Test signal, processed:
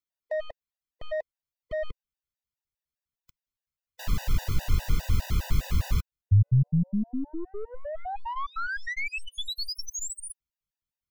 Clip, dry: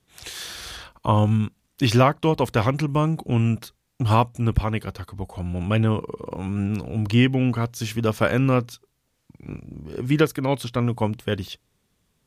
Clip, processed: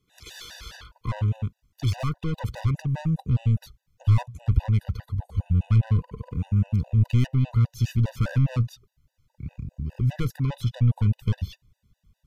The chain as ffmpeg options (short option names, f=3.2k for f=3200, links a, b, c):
-af "equalizer=f=9.3k:t=o:w=0.49:g=-8,aeval=exprs='(tanh(14.1*val(0)+0.15)-tanh(0.15))/14.1':c=same,asubboost=boost=10:cutoff=120,afftfilt=real='re*gt(sin(2*PI*4.9*pts/sr)*(1-2*mod(floor(b*sr/1024/500),2)),0)':imag='im*gt(sin(2*PI*4.9*pts/sr)*(1-2*mod(floor(b*sr/1024/500),2)),0)':win_size=1024:overlap=0.75,volume=-2.5dB"